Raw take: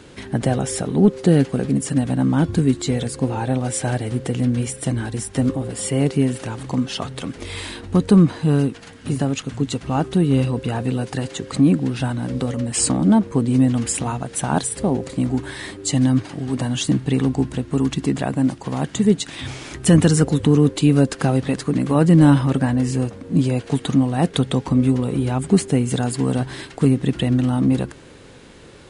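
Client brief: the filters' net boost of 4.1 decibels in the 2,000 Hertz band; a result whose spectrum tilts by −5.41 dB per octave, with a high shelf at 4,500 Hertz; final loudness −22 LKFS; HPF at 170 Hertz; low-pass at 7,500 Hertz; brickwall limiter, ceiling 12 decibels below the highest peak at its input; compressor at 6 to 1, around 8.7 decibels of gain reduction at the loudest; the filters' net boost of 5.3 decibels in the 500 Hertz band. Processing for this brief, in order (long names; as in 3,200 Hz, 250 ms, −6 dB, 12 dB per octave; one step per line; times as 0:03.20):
high-pass filter 170 Hz
low-pass filter 7,500 Hz
parametric band 500 Hz +6.5 dB
parametric band 2,000 Hz +6 dB
high-shelf EQ 4,500 Hz −5.5 dB
downward compressor 6 to 1, threshold −17 dBFS
level +6 dB
brickwall limiter −11.5 dBFS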